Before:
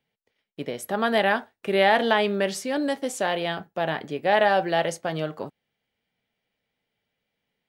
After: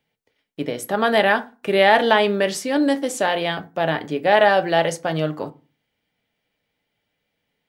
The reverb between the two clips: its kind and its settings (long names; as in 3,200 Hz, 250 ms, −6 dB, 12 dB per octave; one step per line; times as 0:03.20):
feedback delay network reverb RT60 0.34 s, low-frequency decay 1.4×, high-frequency decay 0.6×, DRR 11 dB
level +4.5 dB